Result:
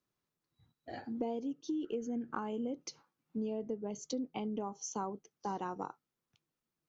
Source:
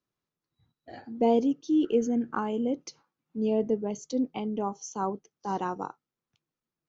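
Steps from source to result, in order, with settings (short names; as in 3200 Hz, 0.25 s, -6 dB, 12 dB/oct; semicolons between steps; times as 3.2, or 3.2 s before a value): compressor 10:1, threshold -34 dBFS, peak gain reduction 16 dB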